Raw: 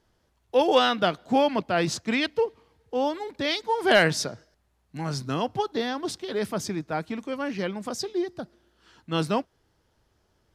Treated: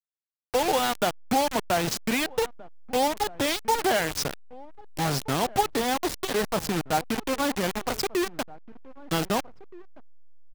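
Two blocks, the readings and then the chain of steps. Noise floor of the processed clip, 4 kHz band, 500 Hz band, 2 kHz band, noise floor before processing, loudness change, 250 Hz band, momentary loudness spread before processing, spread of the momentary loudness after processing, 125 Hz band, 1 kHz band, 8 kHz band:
−79 dBFS, −0.5 dB, −2.0 dB, −2.0 dB, −70 dBFS, −0.5 dB, −1.0 dB, 12 LU, 6 LU, −0.5 dB, +1.5 dB, +6.0 dB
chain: downward compressor 16 to 1, threshold −25 dBFS, peak gain reduction 12.5 dB
dynamic equaliser 800 Hz, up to +7 dB, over −47 dBFS, Q 3.2
bit reduction 5 bits
slack as between gear wheels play −39.5 dBFS
slap from a distant wall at 270 metres, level −20 dB
level +3 dB

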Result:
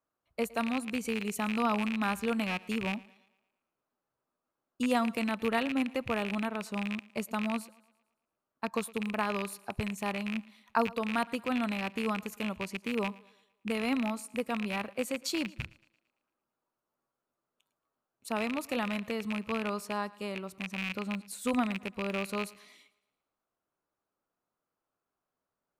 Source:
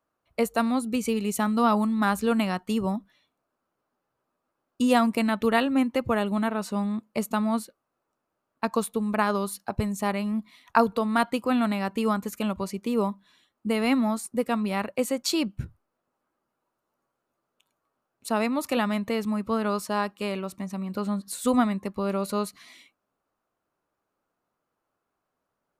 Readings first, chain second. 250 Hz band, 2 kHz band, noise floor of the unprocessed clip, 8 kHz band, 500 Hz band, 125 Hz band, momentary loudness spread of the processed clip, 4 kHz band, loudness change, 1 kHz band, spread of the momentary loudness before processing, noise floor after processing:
−7.5 dB, −2.5 dB, −82 dBFS, −7.0 dB, −7.5 dB, −7.5 dB, 7 LU, −4.0 dB, −6.5 dB, −7.5 dB, 8 LU, below −85 dBFS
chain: loose part that buzzes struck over −33 dBFS, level −16 dBFS
feedback echo with a high-pass in the loop 113 ms, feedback 48%, high-pass 190 Hz, level −21.5 dB
level −7.5 dB

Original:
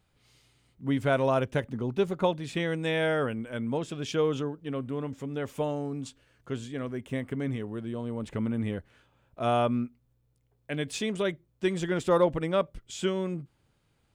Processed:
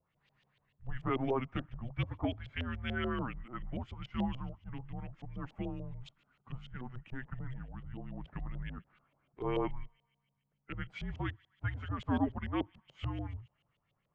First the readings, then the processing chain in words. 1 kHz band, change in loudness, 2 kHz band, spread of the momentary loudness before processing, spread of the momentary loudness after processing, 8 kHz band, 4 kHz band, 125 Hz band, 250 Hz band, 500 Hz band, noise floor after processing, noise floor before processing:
−9.0 dB, −9.0 dB, −8.5 dB, 10 LU, 13 LU, below −25 dB, −10.0 dB, −5.5 dB, −8.0 dB, −14.0 dB, −81 dBFS, −71 dBFS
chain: spectral magnitudes quantised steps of 15 dB
high-pass filter 100 Hz
frequency shifter −260 Hz
on a send: delay with a high-pass on its return 63 ms, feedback 78%, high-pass 2,300 Hz, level −21 dB
on the sum: auto-filter low-pass saw up 6.9 Hz 530–3,500 Hz
level −8.5 dB

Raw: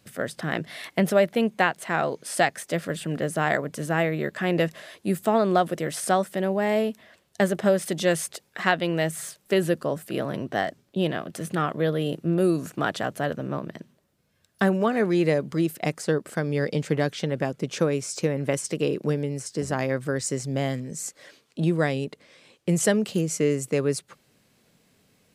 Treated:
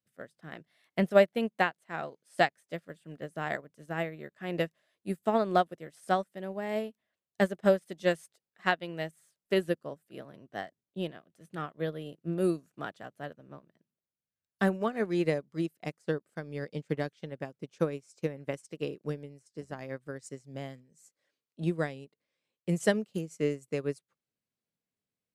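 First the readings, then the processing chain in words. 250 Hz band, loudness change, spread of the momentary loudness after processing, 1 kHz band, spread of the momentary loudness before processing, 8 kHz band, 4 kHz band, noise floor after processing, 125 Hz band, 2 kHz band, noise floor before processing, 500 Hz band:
−8.5 dB, −7.0 dB, 16 LU, −6.5 dB, 8 LU, −19.0 dB, −8.5 dB, below −85 dBFS, −10.0 dB, −7.5 dB, −66 dBFS, −6.5 dB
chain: expander for the loud parts 2.5 to 1, over −36 dBFS

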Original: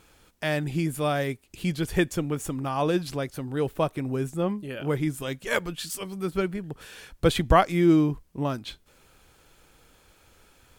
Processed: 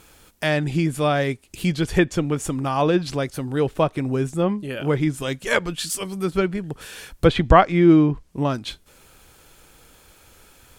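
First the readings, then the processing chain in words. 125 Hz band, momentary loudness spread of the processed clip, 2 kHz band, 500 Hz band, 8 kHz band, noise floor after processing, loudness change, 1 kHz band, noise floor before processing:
+5.5 dB, 12 LU, +5.5 dB, +5.5 dB, +5.5 dB, −54 dBFS, +5.5 dB, +5.5 dB, −60 dBFS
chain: treble cut that deepens with the level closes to 2,900 Hz, closed at −18.5 dBFS
high-shelf EQ 8,500 Hz +8 dB
level +5.5 dB

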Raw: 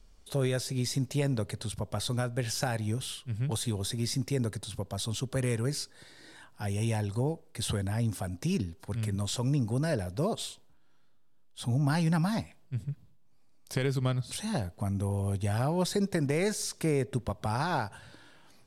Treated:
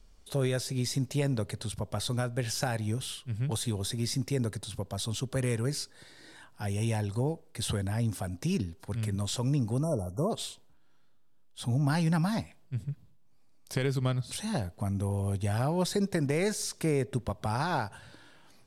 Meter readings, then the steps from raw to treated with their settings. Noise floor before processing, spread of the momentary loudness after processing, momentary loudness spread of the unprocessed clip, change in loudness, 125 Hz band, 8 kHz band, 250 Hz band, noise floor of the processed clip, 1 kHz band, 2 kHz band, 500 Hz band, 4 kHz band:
−57 dBFS, 8 LU, 8 LU, 0.0 dB, 0.0 dB, 0.0 dB, 0.0 dB, −57 dBFS, 0.0 dB, 0.0 dB, 0.0 dB, 0.0 dB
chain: time-frequency box erased 0:09.83–0:10.30, 1,400–5,500 Hz

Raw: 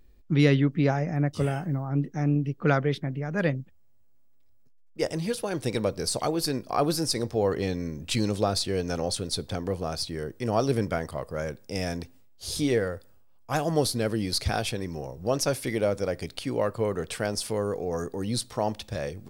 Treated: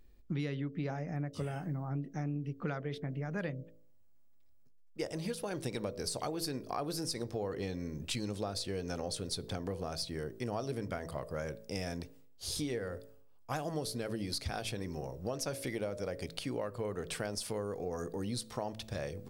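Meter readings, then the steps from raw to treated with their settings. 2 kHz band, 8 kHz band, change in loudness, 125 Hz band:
−10.5 dB, −8.5 dB, −10.5 dB, −11.0 dB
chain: hum removal 55.12 Hz, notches 12
downward compressor 6 to 1, threshold −30 dBFS, peak gain reduction 14 dB
level −3.5 dB

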